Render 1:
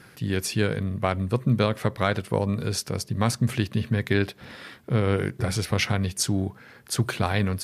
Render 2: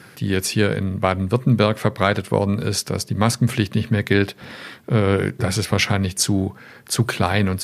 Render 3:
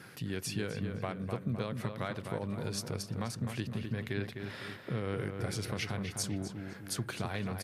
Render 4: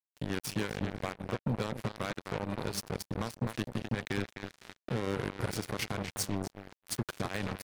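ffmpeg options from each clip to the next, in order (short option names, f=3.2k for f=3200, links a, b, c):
-af "highpass=91,volume=6dB"
-filter_complex "[0:a]alimiter=limit=-5dB:level=0:latency=1:release=230,acompressor=threshold=-33dB:ratio=2,asplit=2[a][b];[b]adelay=255,lowpass=f=2.8k:p=1,volume=-6dB,asplit=2[c][d];[d]adelay=255,lowpass=f=2.8k:p=1,volume=0.49,asplit=2[e][f];[f]adelay=255,lowpass=f=2.8k:p=1,volume=0.49,asplit=2[g][h];[h]adelay=255,lowpass=f=2.8k:p=1,volume=0.49,asplit=2[i][j];[j]adelay=255,lowpass=f=2.8k:p=1,volume=0.49,asplit=2[k][l];[l]adelay=255,lowpass=f=2.8k:p=1,volume=0.49[m];[a][c][e][g][i][k][m]amix=inputs=7:normalize=0,volume=-7.5dB"
-af "aeval=exprs='val(0)+0.5*0.0112*sgn(val(0))':c=same,acrusher=bits=4:mix=0:aa=0.5"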